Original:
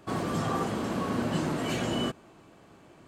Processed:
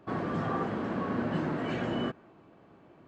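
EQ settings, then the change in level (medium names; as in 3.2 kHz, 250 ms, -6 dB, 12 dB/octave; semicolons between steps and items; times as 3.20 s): dynamic bell 1.7 kHz, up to +5 dB, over -54 dBFS, Q 2.1; tape spacing loss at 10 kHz 29 dB; bass shelf 72 Hz -10 dB; 0.0 dB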